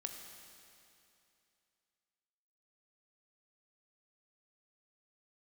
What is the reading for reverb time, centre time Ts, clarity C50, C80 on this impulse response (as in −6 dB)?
2.7 s, 63 ms, 5.0 dB, 5.5 dB